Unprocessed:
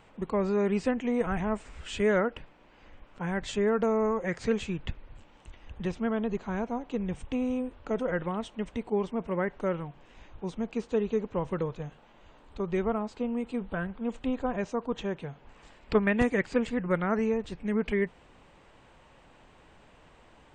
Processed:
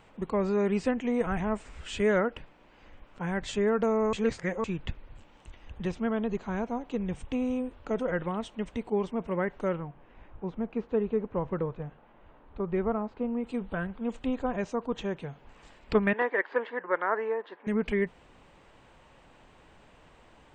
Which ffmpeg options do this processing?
-filter_complex "[0:a]asettb=1/sr,asplit=3[s0][s1][s2];[s0]atrim=end=9.764[s3];[s1]atrim=start=9.76:end=13.44,asetpts=PTS-STARTPTS,afade=t=in:d=0.004:c=qsin,afade=t=out:st=3.676:d=0.004:c=qsin,lowpass=1900[s4];[s2]atrim=start=13.436[s5];[s3][s4]acrossfade=d=0.004:c1=hsin:c2=qsin[s6];[s6][s5]acrossfade=d=0.004:c1=qsin:c2=hsin,asettb=1/sr,asplit=3[s7][s8][s9];[s7]atrim=end=16.134[s10];[s8]atrim=start=16.13:end=17.67,asetpts=PTS-STARTPTS,afade=t=in:d=0.004:c=qsin,afade=t=out:st=1.536:d=0.004:c=qsin,highpass=f=380:w=0.5412,highpass=f=380:w=1.3066,equalizer=f=990:t=q:w=4:g=8,equalizer=f=1700:t=q:w=4:g=7,equalizer=f=2500:t=q:w=4:g=-9,lowpass=f=3100:w=0.5412,lowpass=f=3100:w=1.3066[s11];[s9]atrim=start=17.666[s12];[s10][s11]acrossfade=d=0.004:c1=hsin:c2=qsin[s13];[s13][s12]acrossfade=d=0.004:c1=qsin:c2=hsin,asplit=3[s14][s15][s16];[s14]atrim=end=4.132[s17];[s15]atrim=start=4.128:end=4.642,asetpts=PTS-STARTPTS,areverse[s18];[s16]atrim=start=4.638[s19];[s17][s18]acrossfade=d=0.004:c1=hsin:c2=hsin[s20];[s20][s19]acrossfade=d=0.004:c1=hsin:c2=hsin"

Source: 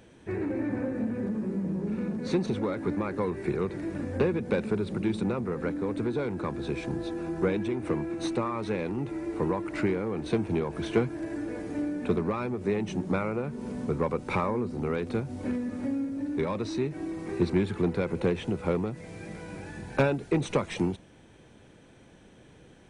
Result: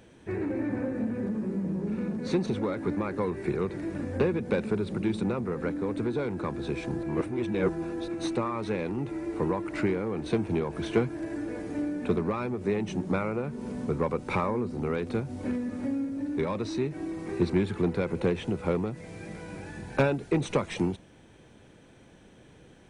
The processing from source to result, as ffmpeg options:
-filter_complex "[0:a]asplit=3[s0][s1][s2];[s0]atrim=end=7.032[s3];[s1]atrim=start=7.028:end=8.082,asetpts=PTS-STARTPTS,areverse[s4];[s2]atrim=start=8.078[s5];[s3][s4]acrossfade=d=0.004:c1=hsin:c2=hsin[s6];[s6][s5]acrossfade=d=0.004:c1=hsin:c2=hsin"

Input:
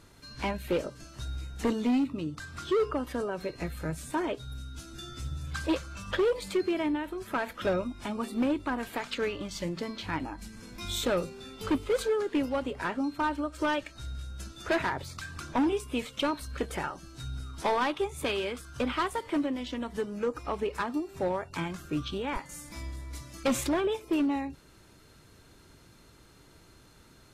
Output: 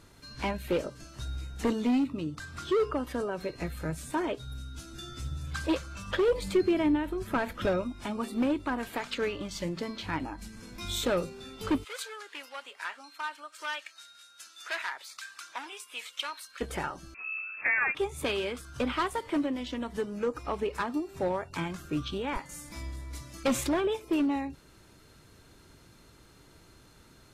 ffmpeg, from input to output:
-filter_complex "[0:a]asettb=1/sr,asplit=3[s0][s1][s2];[s0]atrim=end=6.284[s3];[s1]atrim=start=6.28:end=7.66,asetpts=PTS-STARTPTS,afade=t=in:d=0.004:c=qsin,afade=t=out:st=1.376:d=0.004:c=qsin,lowshelf=f=240:g=10.5[s4];[s2]atrim=start=7.656[s5];[s3][s4]acrossfade=d=0.004:c1=hsin:c2=qsin[s6];[s6][s5]acrossfade=d=0.004:c1=qsin:c2=hsin,asplit=3[s7][s8][s9];[s7]afade=t=out:st=11.83:d=0.02[s10];[s8]highpass=1400,afade=t=in:st=11.83:d=0.02,afade=t=out:st=16.6:d=0.02[s11];[s9]afade=t=in:st=16.6:d=0.02[s12];[s10][s11][s12]amix=inputs=3:normalize=0,asettb=1/sr,asplit=3[s13][s14][s15];[s13]atrim=end=17.144[s16];[s14]atrim=start=17.14:end=17.95,asetpts=PTS-STARTPTS,afade=t=in:d=0.004:c=qsin,afade=t=out:st=0.806:d=0.004:c=qsin,lowpass=f=2300:t=q:w=0.5098,lowpass=f=2300:t=q:w=0.6013,lowpass=f=2300:t=q:w=0.9,lowpass=f=2300:t=q:w=2.563,afreqshift=-2700[s17];[s15]atrim=start=17.946[s18];[s16][s17]acrossfade=d=0.004:c1=hsin:c2=qsin[s19];[s19][s18]acrossfade=d=0.004:c1=qsin:c2=hsin"

